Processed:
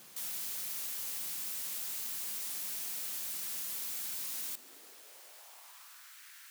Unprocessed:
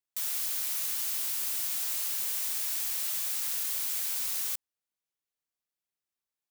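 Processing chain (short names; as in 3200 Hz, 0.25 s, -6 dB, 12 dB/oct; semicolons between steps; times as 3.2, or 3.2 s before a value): vibrato 3.4 Hz 36 cents; requantised 8-bit, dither triangular; high-pass sweep 170 Hz -> 1600 Hz, 4.22–6.2; gain -6.5 dB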